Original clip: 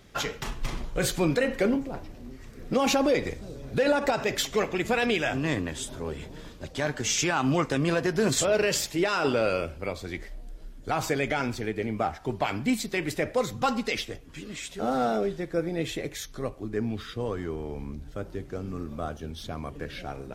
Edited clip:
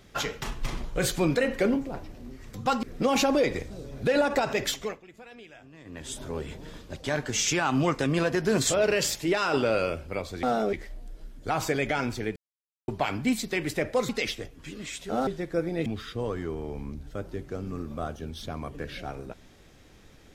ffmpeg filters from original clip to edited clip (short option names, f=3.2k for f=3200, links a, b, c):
-filter_complex "[0:a]asplit=12[a][b][c][d][e][f][g][h][i][j][k][l];[a]atrim=end=2.542[m];[b]atrim=start=13.498:end=13.792[n];[c]atrim=start=2.538:end=4.72,asetpts=PTS-STARTPTS,afade=t=out:st=1.822:d=0.36:silence=0.0749894[o];[d]atrim=start=4.72:end=5.55,asetpts=PTS-STARTPTS,volume=-22.5dB[p];[e]atrim=start=5.55:end=10.142,asetpts=PTS-STARTPTS,afade=t=in:d=0.36:silence=0.0749894[q];[f]atrim=start=14.968:end=15.272[r];[g]atrim=start=10.138:end=11.77,asetpts=PTS-STARTPTS,afade=t=out:st=1.628:d=0.004:c=hsin[s];[h]atrim=start=11.77:end=12.29,asetpts=PTS-STARTPTS,volume=0[t];[i]atrim=start=12.29:end=13.502,asetpts=PTS-STARTPTS,afade=t=in:d=0.004:c=hsin[u];[j]atrim=start=13.788:end=14.972[v];[k]atrim=start=15.268:end=15.862[w];[l]atrim=start=16.868[x];[m][n]acrossfade=d=0.004:c1=hsin:c2=hsin[y];[o][p][q]concat=n=3:v=0:a=1[z];[y][z]acrossfade=d=0.004:c1=hsin:c2=hsin[aa];[aa][r]acrossfade=d=0.004:c1=hsin:c2=hsin[ab];[s][t][u]concat=n=3:v=0:a=1[ac];[ab][ac]acrossfade=d=0.004:c1=hsin:c2=hsin[ad];[ad][v]acrossfade=d=0.004:c1=hsin:c2=hsin[ae];[ae][w]acrossfade=d=0.004:c1=hsin:c2=hsin[af];[af][x]acrossfade=d=0.004:c1=hsin:c2=hsin"